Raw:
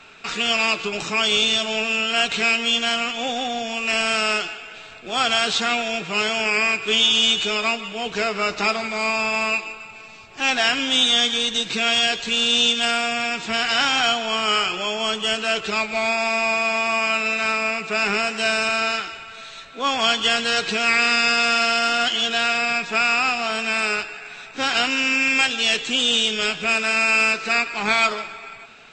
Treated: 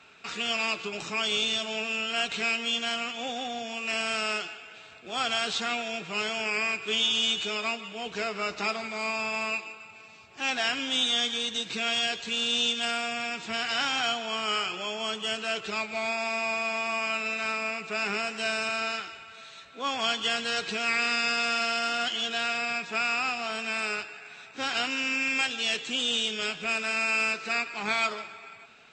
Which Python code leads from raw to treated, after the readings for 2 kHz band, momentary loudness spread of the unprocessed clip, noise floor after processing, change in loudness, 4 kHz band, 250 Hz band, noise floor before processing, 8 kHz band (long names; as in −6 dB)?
−8.5 dB, 9 LU, −49 dBFS, −8.5 dB, −8.5 dB, −8.5 dB, −40 dBFS, −8.5 dB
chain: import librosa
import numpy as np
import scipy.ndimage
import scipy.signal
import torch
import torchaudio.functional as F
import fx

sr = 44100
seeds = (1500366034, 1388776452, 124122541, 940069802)

y = scipy.signal.sosfilt(scipy.signal.butter(2, 56.0, 'highpass', fs=sr, output='sos'), x)
y = F.gain(torch.from_numpy(y), -8.5).numpy()